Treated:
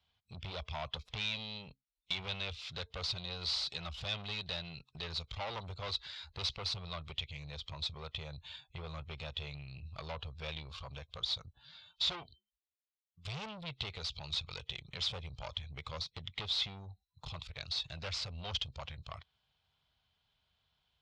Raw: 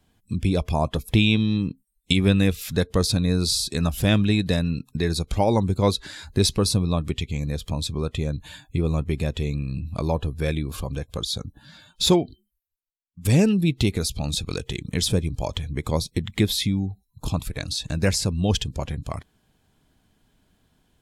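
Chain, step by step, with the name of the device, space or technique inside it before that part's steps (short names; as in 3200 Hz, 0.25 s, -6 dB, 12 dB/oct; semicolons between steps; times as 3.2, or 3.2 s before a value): scooped metal amplifier (tube stage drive 26 dB, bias 0.7; speaker cabinet 84–4100 Hz, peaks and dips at 110 Hz -4 dB, 190 Hz -6 dB, 1700 Hz -9 dB, 2400 Hz -3 dB; passive tone stack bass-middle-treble 10-0-10); gain +3.5 dB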